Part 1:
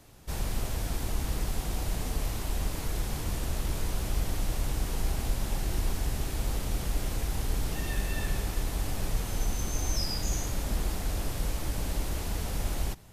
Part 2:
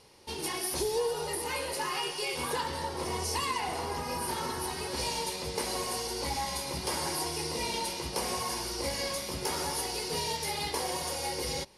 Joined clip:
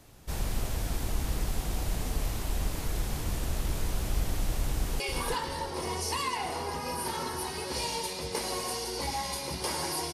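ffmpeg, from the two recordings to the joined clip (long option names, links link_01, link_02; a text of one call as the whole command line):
ffmpeg -i cue0.wav -i cue1.wav -filter_complex "[0:a]apad=whole_dur=10.13,atrim=end=10.13,atrim=end=5.002[link_01];[1:a]atrim=start=2.228:end=7.36[link_02];[link_01][link_02]acrossfade=duration=0.004:curve1=hsin:curve2=hsin,asplit=2[link_03][link_04];[link_04]afade=type=in:start_time=4.73:duration=0.01,afade=type=out:start_time=5:duration=0.01,aecho=0:1:350|700|1050:0.473151|0.118288|0.029572[link_05];[link_03][link_05]amix=inputs=2:normalize=0" out.wav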